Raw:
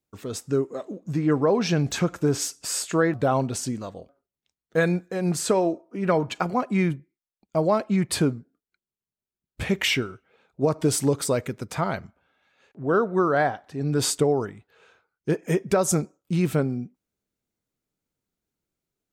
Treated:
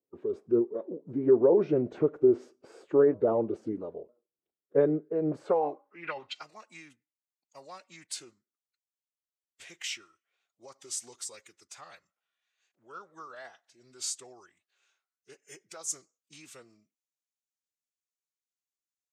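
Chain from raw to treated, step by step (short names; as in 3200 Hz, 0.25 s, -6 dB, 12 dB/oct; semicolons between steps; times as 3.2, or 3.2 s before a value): tone controls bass 0 dB, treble -8 dB; formant-preserving pitch shift -2.5 st; band-pass sweep 410 Hz -> 6800 Hz, 5.27–6.54; gain +3 dB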